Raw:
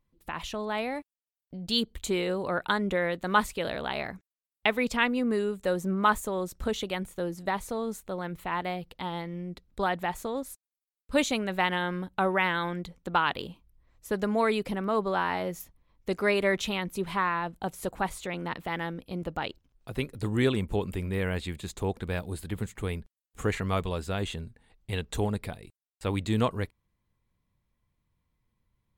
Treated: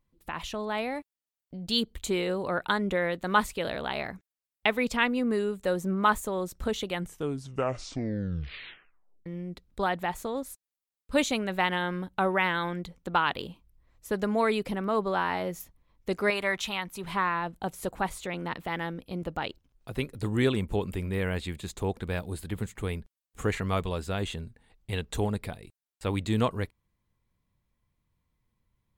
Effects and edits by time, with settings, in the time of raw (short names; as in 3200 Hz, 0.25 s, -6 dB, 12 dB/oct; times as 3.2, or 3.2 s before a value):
6.86 tape stop 2.40 s
16.3–17.04 resonant low shelf 630 Hz -6.5 dB, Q 1.5